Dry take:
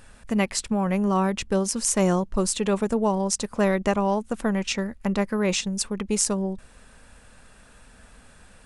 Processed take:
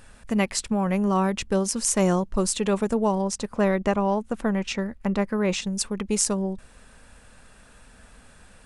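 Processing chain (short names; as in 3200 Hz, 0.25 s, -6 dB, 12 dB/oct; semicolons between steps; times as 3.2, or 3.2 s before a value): 3.22–5.62 high shelf 4000 Hz -7.5 dB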